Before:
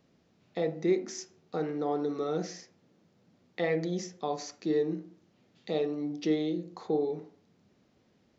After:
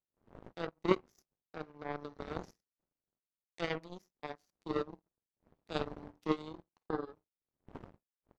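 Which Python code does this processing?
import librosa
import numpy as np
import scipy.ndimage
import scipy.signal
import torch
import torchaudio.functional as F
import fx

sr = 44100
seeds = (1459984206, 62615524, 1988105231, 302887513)

y = fx.dmg_wind(x, sr, seeds[0], corner_hz=350.0, level_db=-42.0)
y = fx.power_curve(y, sr, exponent=3.0)
y = y * librosa.db_to_amplitude(5.5)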